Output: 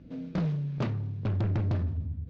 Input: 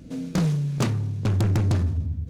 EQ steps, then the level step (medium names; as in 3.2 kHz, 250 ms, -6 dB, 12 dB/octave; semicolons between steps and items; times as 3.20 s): low-pass 5.2 kHz 12 dB/octave; dynamic bell 610 Hz, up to +5 dB, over -51 dBFS, Q 7; distance through air 170 m; -6.5 dB